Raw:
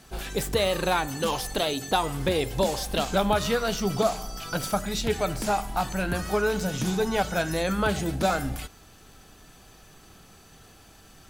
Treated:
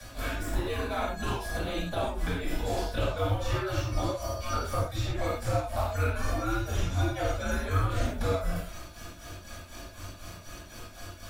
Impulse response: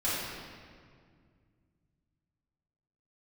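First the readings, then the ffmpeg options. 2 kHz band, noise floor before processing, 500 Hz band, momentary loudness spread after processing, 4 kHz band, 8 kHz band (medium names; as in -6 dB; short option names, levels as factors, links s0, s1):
-5.0 dB, -52 dBFS, -6.5 dB, 15 LU, -8.5 dB, -8.0 dB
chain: -filter_complex "[0:a]tremolo=f=4:d=0.95,acompressor=threshold=0.0158:ratio=2,afreqshift=-99,acrossover=split=92|560|1900[s0][s1][s2][s3];[s0]acompressor=threshold=0.00891:ratio=4[s4];[s1]acompressor=threshold=0.00447:ratio=4[s5];[s2]acompressor=threshold=0.00631:ratio=4[s6];[s3]acompressor=threshold=0.002:ratio=4[s7];[s4][s5][s6][s7]amix=inputs=4:normalize=0[s8];[1:a]atrim=start_sample=2205,atrim=end_sample=6174[s9];[s8][s9]afir=irnorm=-1:irlink=0,volume=1.58"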